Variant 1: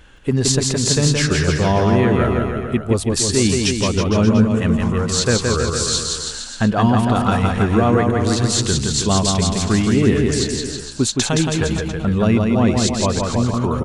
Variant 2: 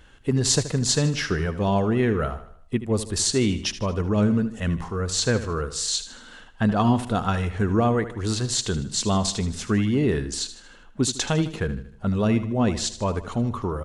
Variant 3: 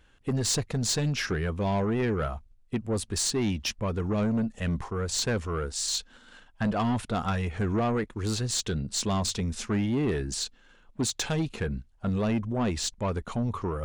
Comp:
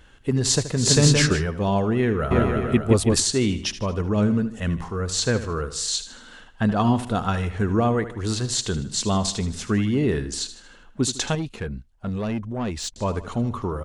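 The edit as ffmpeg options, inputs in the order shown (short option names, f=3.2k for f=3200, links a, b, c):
-filter_complex "[0:a]asplit=2[a][b];[1:a]asplit=4[c][d][e][f];[c]atrim=end=0.95[g];[a]atrim=start=0.71:end=1.45[h];[d]atrim=start=1.21:end=2.312[i];[b]atrim=start=2.308:end=3.202[j];[e]atrim=start=3.198:end=11.352[k];[2:a]atrim=start=11.348:end=12.962[l];[f]atrim=start=12.958[m];[g][h]acrossfade=d=0.24:c1=tri:c2=tri[n];[n][i]acrossfade=d=0.24:c1=tri:c2=tri[o];[o][j]acrossfade=d=0.004:c1=hsin:c2=hsin[p];[p][k]acrossfade=d=0.004:c1=hsin:c2=hsin[q];[q][l]acrossfade=d=0.004:c1=hsin:c2=hsin[r];[r][m]acrossfade=d=0.004:c1=hsin:c2=hsin"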